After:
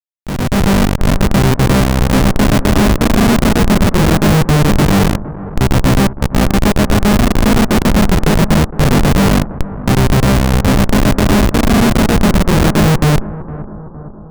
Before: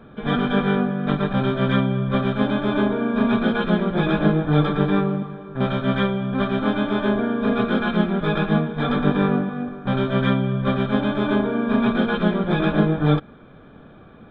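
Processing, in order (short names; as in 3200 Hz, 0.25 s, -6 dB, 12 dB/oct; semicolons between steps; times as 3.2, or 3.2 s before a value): high shelf 2600 Hz -3.5 dB; Schmitt trigger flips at -18 dBFS; AGC gain up to 13.5 dB; analogue delay 0.461 s, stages 4096, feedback 57%, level -15.5 dB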